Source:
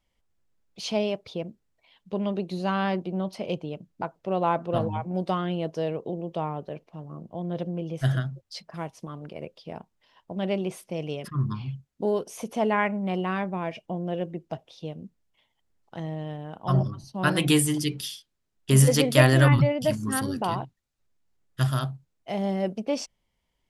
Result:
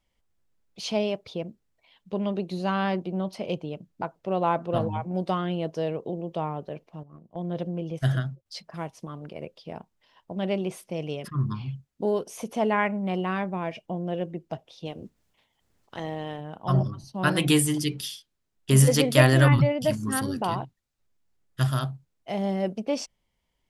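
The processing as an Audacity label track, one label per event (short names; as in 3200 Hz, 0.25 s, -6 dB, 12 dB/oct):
7.030000	8.460000	gate -38 dBFS, range -11 dB
14.850000	16.390000	spectral limiter ceiling under each frame's peak by 14 dB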